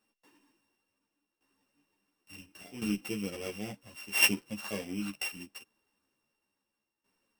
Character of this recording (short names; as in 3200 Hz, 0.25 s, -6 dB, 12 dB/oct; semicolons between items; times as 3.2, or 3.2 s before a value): a buzz of ramps at a fixed pitch in blocks of 16 samples; tremolo saw down 0.71 Hz, depth 80%; a shimmering, thickened sound